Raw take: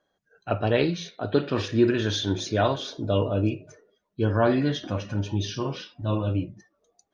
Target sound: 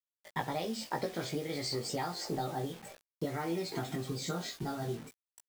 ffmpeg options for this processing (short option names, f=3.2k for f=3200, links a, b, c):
-filter_complex "[0:a]acompressor=threshold=-35dB:ratio=16,adynamicequalizer=threshold=0.00126:dfrequency=420:dqfactor=6.7:tfrequency=420:tqfactor=6.7:attack=5:release=100:ratio=0.375:range=2.5:mode=cutabove:tftype=bell,asetrate=57330,aresample=44100,acrusher=bits=8:mix=0:aa=0.000001,asplit=2[a][b];[b]adelay=18,volume=-3dB[c];[a][c]amix=inputs=2:normalize=0,volume=2.5dB"